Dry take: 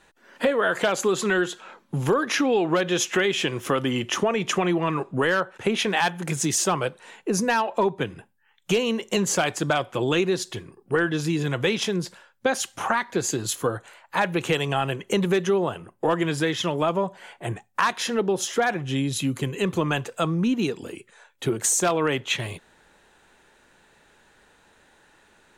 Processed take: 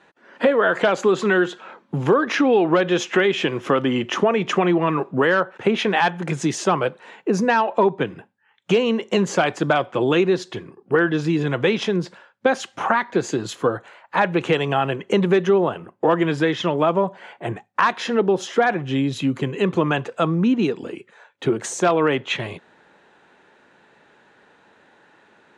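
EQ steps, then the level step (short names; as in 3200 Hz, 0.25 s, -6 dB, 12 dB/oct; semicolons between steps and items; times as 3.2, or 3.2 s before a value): HPF 150 Hz; air absorption 76 m; high shelf 3700 Hz -9 dB; +5.5 dB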